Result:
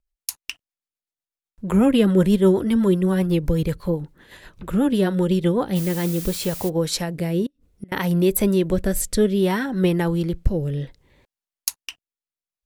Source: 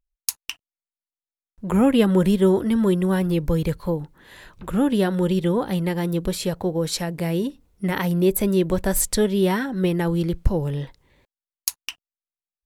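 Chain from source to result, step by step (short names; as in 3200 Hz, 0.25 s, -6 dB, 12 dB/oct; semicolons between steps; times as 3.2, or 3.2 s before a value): 7.46–7.92 flipped gate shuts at -22 dBFS, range -29 dB; rotary speaker horn 8 Hz, later 0.65 Hz, at 5.4; 5.75–6.68 added noise blue -37 dBFS; gain +2.5 dB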